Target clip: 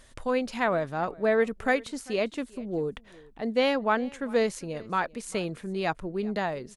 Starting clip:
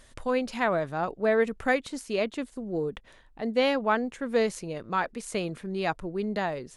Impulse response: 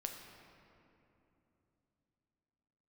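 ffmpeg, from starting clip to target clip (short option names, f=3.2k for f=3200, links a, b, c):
-af "aecho=1:1:396:0.0708"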